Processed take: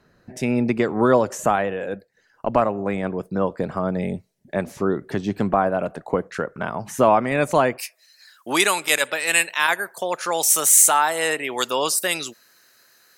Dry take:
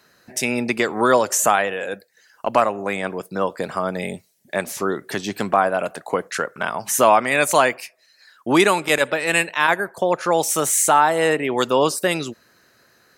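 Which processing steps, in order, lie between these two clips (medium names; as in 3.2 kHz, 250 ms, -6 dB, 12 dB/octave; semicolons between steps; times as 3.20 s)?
tilt EQ -3.5 dB/octave, from 7.77 s +3 dB/octave; trim -3.5 dB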